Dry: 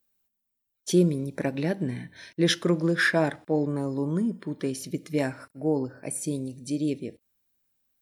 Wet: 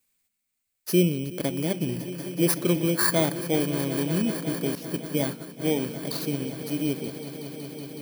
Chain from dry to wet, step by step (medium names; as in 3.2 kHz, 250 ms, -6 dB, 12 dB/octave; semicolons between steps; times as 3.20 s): bit-reversed sample order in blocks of 16 samples; echo with a slow build-up 186 ms, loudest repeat 5, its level -16 dB; 4.75–5.62 s: expander -26 dBFS